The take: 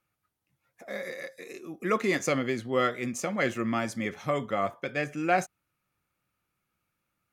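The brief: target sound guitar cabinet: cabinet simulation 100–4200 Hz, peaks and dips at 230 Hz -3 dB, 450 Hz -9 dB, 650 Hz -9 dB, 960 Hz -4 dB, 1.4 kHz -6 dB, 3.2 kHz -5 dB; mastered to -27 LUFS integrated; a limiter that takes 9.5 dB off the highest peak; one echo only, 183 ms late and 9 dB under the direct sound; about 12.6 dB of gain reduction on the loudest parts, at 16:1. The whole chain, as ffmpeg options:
-af "acompressor=threshold=0.0224:ratio=16,alimiter=level_in=2.37:limit=0.0631:level=0:latency=1,volume=0.422,highpass=100,equalizer=f=230:t=q:w=4:g=-3,equalizer=f=450:t=q:w=4:g=-9,equalizer=f=650:t=q:w=4:g=-9,equalizer=f=960:t=q:w=4:g=-4,equalizer=f=1400:t=q:w=4:g=-6,equalizer=f=3200:t=q:w=4:g=-5,lowpass=f=4200:w=0.5412,lowpass=f=4200:w=1.3066,aecho=1:1:183:0.355,volume=7.94"

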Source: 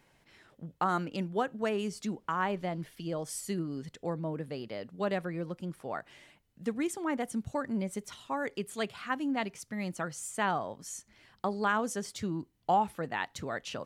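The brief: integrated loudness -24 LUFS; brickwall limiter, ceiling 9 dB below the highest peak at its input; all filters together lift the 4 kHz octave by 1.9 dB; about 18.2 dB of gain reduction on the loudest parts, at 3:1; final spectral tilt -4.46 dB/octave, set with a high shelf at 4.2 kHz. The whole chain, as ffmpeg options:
-af "equalizer=f=4000:t=o:g=5.5,highshelf=f=4200:g=-5,acompressor=threshold=0.00398:ratio=3,volume=17.8,alimiter=limit=0.237:level=0:latency=1"

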